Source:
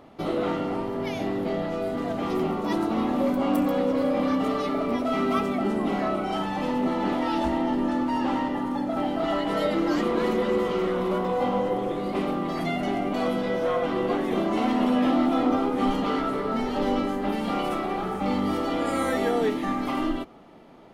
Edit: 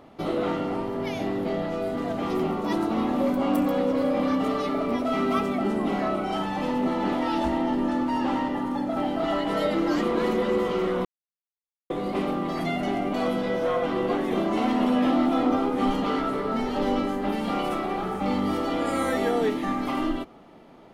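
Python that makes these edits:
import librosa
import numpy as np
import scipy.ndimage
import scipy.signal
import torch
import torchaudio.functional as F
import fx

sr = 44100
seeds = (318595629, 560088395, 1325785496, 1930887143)

y = fx.edit(x, sr, fx.silence(start_s=11.05, length_s=0.85), tone=tone)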